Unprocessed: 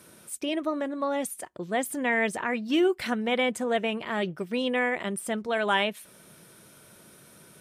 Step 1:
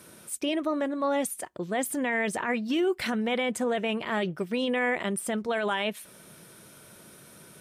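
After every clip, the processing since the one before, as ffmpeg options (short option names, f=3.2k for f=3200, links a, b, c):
-af "alimiter=limit=-21dB:level=0:latency=1:release=17,volume=2dB"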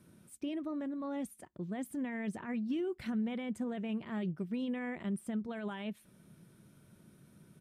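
-af "firequalizer=gain_entry='entry(190,0);entry(480,-13);entry(5400,-17)':delay=0.05:min_phase=1,volume=-2.5dB"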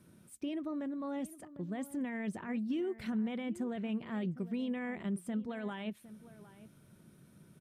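-filter_complex "[0:a]asplit=2[a][b];[b]adelay=758,volume=-16dB,highshelf=f=4k:g=-17.1[c];[a][c]amix=inputs=2:normalize=0"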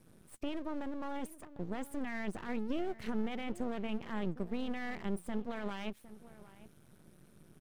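-af "aeval=exprs='max(val(0),0)':c=same,volume=3dB"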